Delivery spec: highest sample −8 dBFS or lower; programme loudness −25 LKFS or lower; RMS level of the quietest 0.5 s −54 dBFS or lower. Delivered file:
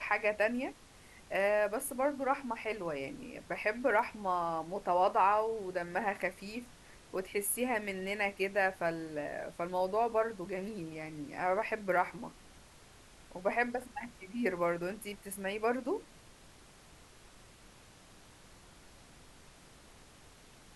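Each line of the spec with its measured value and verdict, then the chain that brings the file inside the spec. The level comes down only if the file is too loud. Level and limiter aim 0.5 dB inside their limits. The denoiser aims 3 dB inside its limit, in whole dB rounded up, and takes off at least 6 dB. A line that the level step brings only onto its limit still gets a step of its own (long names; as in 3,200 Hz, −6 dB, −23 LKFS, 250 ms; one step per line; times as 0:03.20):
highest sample −16.0 dBFS: in spec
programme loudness −34.5 LKFS: in spec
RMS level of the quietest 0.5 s −58 dBFS: in spec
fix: no processing needed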